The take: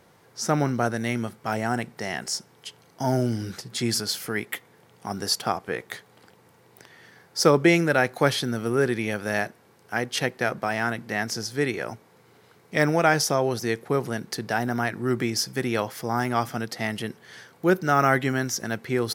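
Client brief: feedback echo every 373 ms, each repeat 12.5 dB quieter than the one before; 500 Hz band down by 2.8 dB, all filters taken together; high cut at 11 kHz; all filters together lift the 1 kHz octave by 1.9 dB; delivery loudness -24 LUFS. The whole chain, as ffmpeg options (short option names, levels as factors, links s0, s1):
-af "lowpass=11000,equalizer=f=500:t=o:g=-5,equalizer=f=1000:t=o:g=4.5,aecho=1:1:373|746|1119:0.237|0.0569|0.0137,volume=1.19"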